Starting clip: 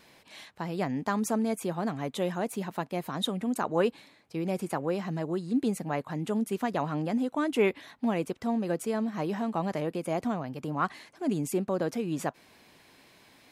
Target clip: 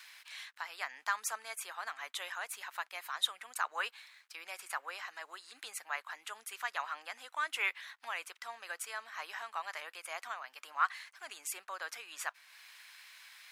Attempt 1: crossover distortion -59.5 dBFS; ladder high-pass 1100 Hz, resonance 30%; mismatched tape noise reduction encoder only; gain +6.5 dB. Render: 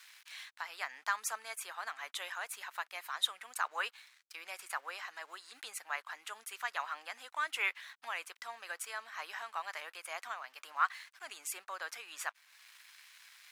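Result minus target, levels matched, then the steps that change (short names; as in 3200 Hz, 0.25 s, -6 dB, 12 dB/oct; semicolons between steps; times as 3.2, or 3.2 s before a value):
crossover distortion: distortion +11 dB
change: crossover distortion -71 dBFS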